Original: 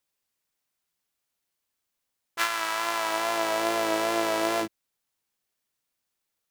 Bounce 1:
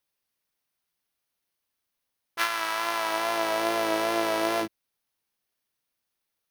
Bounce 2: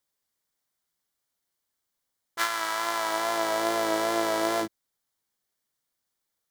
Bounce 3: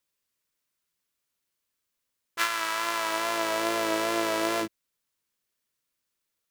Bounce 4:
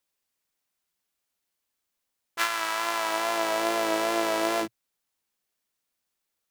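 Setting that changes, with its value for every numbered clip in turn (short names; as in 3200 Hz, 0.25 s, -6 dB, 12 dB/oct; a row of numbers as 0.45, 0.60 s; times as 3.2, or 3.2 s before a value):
bell, frequency: 7400, 2600, 770, 120 Hz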